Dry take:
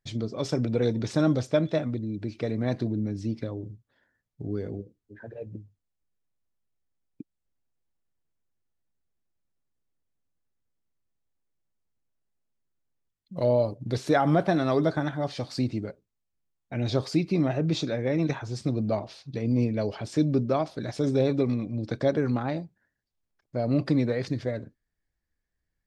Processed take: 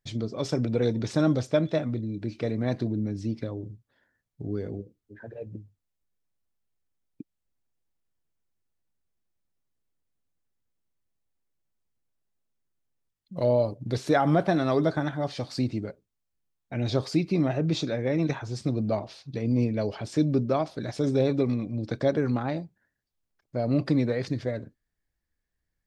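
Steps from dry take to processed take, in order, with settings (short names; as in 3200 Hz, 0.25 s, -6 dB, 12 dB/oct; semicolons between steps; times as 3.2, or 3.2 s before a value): 1.86–2.49 doubler 26 ms -12.5 dB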